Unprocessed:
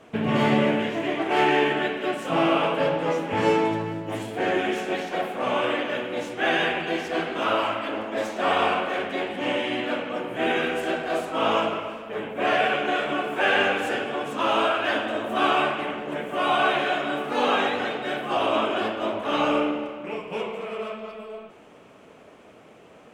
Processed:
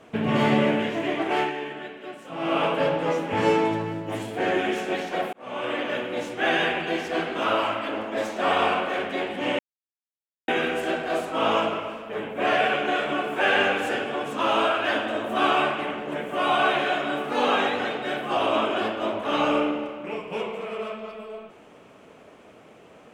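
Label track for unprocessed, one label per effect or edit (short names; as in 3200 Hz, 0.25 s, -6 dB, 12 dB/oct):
1.290000	2.620000	dip -11.5 dB, fades 0.24 s
5.330000	5.880000	fade in
9.590000	10.480000	mute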